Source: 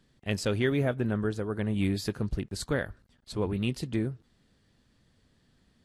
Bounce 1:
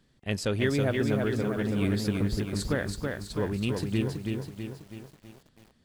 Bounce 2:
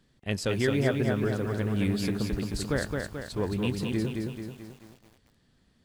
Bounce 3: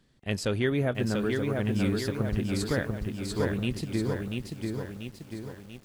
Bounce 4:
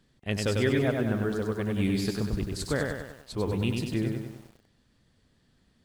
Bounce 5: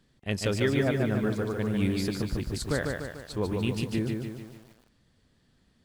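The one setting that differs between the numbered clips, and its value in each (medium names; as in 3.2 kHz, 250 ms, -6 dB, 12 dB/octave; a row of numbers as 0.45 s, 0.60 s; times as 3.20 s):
bit-crushed delay, time: 326 ms, 218 ms, 689 ms, 97 ms, 147 ms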